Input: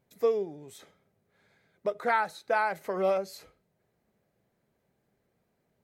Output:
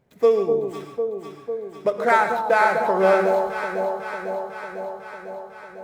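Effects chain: median filter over 9 samples; echo with dull and thin repeats by turns 0.25 s, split 960 Hz, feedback 82%, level -5 dB; non-linear reverb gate 0.17 s rising, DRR 7.5 dB; gain +8.5 dB

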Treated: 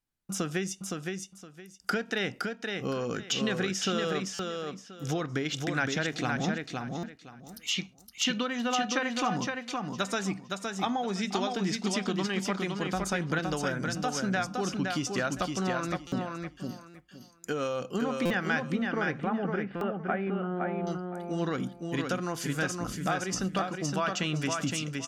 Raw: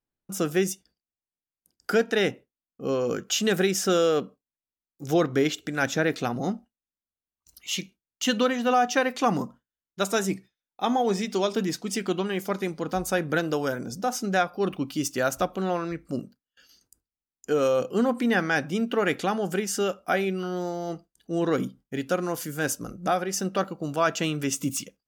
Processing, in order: 18.69–20.87 Gaussian blur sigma 4.5 samples; compressor, threshold -26 dBFS, peak gain reduction 9.5 dB; bell 440 Hz -7.5 dB 1.6 oct; treble ducked by the level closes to 320 Hz, closed at -18.5 dBFS; feedback echo 0.515 s, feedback 22%, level -4 dB; stuck buffer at 4.34/6.98/16.07/16.89/18.25/19.76, samples 256, times 8; gain +3 dB

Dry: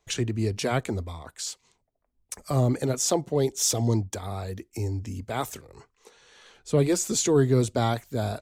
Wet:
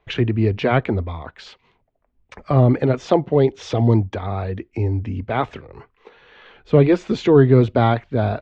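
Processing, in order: LPF 3000 Hz 24 dB/oct; gain +8.5 dB

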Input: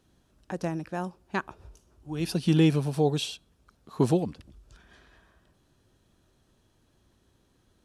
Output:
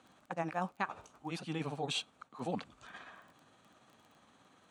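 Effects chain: reverse; compressor 6:1, threshold -37 dBFS, peak gain reduction 19 dB; reverse; speaker cabinet 220–8400 Hz, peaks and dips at 370 Hz -10 dB, 780 Hz +6 dB, 1200 Hz +8 dB, 2200 Hz +5 dB, 5200 Hz -10 dB; granular stretch 0.6×, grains 0.116 s; crackle 11/s -56 dBFS; gain +6.5 dB

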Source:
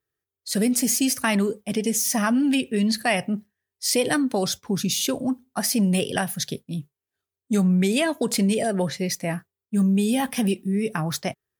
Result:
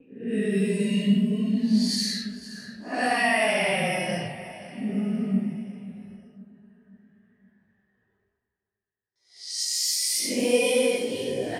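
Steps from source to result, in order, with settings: Paulstretch 8.2×, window 0.05 s, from 2.69; gate with hold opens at -46 dBFS; reverse; upward compressor, threshold -33 dBFS; reverse; low-pass opened by the level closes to 1400 Hz, open at -18 dBFS; chorus voices 2, 1.3 Hz, delay 18 ms, depth 3 ms; feedback echo 0.525 s, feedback 49%, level -16.5 dB

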